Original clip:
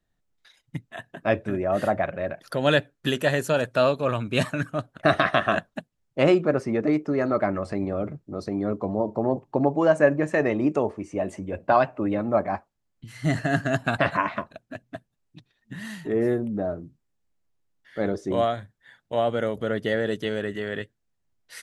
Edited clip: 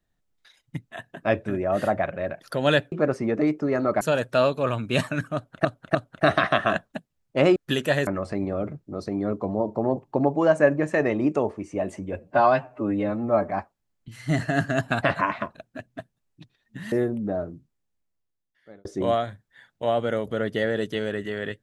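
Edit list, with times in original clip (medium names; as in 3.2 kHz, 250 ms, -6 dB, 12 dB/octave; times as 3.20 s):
2.92–3.43 s: swap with 6.38–7.47 s
4.77–5.07 s: loop, 3 plays
11.57–12.45 s: stretch 1.5×
15.88–16.22 s: delete
16.78–18.15 s: fade out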